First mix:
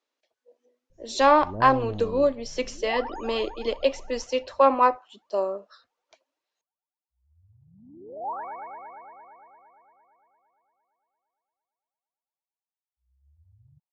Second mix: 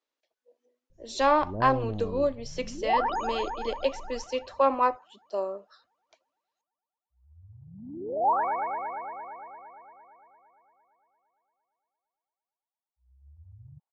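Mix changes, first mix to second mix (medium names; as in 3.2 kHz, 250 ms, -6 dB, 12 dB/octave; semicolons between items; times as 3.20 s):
speech -4.5 dB; second sound +8.5 dB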